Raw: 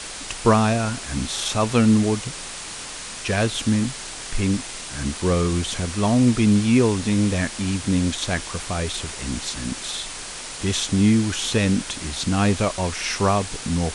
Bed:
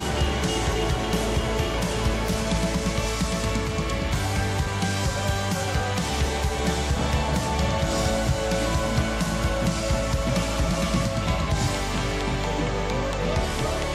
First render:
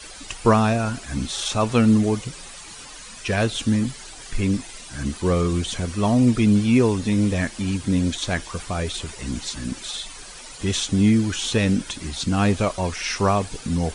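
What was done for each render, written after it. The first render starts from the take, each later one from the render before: denoiser 12 dB, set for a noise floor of -35 dBFS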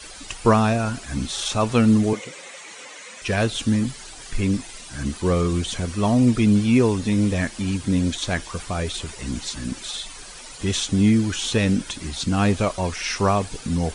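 2.13–3.22 speaker cabinet 280–8400 Hz, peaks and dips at 520 Hz +10 dB, 2100 Hz +9 dB, 4800 Hz -6 dB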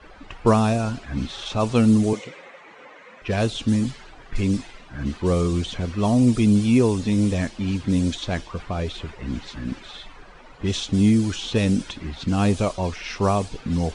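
low-pass opened by the level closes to 1300 Hz, open at -14.5 dBFS; dynamic EQ 1700 Hz, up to -6 dB, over -39 dBFS, Q 1.2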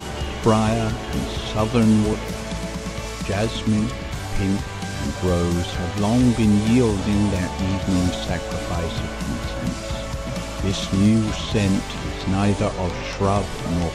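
add bed -4 dB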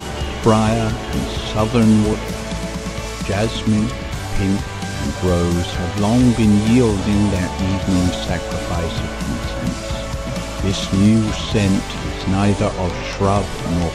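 gain +3.5 dB; limiter -2 dBFS, peak gain reduction 1 dB

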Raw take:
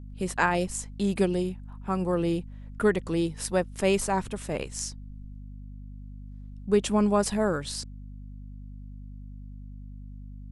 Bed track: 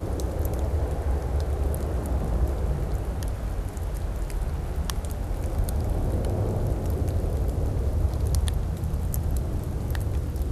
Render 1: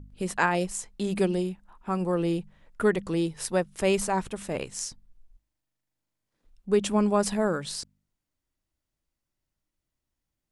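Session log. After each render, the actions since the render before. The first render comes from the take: de-hum 50 Hz, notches 5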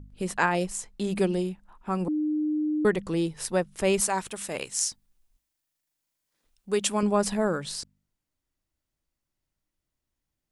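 2.08–2.85 bleep 304 Hz -23.5 dBFS; 4–7.03 tilt +2.5 dB/oct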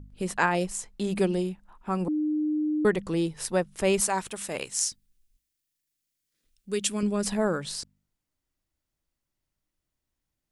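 4.89–7.25 bell 850 Hz -14.5 dB 1.2 oct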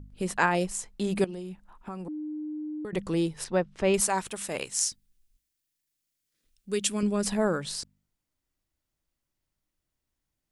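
1.24–2.93 compressor 16:1, threshold -33 dBFS; 3.44–3.94 air absorption 140 m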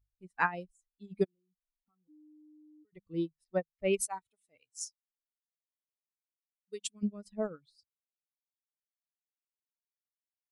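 per-bin expansion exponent 2; upward expander 2.5:1, over -41 dBFS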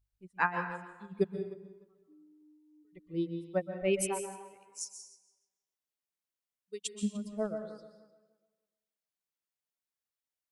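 tape echo 0.3 s, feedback 22%, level -15.5 dB, low-pass 3100 Hz; plate-style reverb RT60 0.8 s, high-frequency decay 0.75×, pre-delay 0.115 s, DRR 6.5 dB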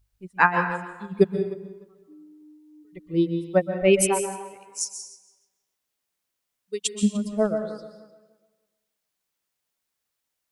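gain +11.5 dB; limiter -3 dBFS, peak gain reduction 1 dB

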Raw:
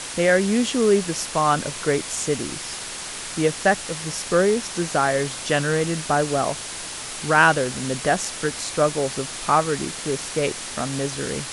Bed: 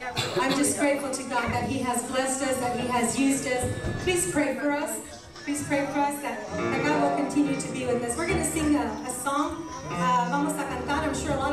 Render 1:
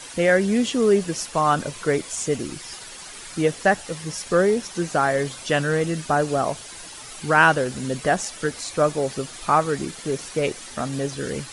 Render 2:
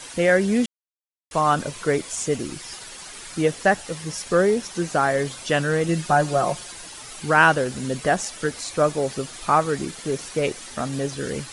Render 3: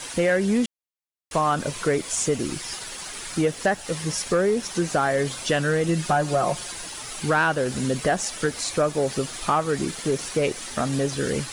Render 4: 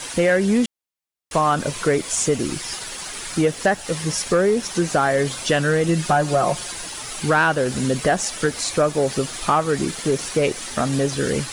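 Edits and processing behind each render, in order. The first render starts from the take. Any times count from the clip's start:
denoiser 10 dB, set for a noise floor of -33 dBFS
0.66–1.31 mute; 5.88–6.72 comb 5.6 ms
compressor 2.5:1, threshold -23 dBFS, peak gain reduction 9 dB; sample leveller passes 1
gain +3.5 dB

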